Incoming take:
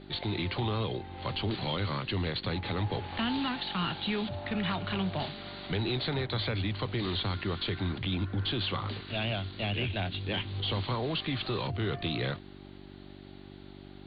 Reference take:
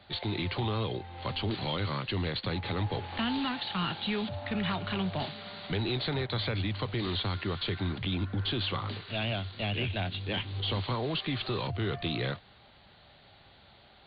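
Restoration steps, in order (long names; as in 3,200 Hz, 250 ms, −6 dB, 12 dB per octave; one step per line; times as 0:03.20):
hum removal 48.3 Hz, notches 8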